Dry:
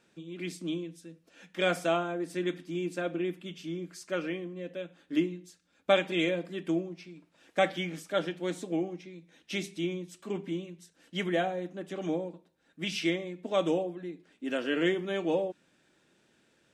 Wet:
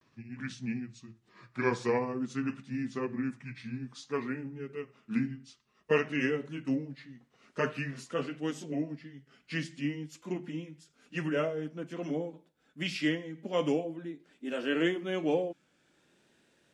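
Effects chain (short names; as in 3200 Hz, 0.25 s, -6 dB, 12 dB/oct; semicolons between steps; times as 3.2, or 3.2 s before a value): gliding pitch shift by -6.5 st ending unshifted; vibrato 0.5 Hz 64 cents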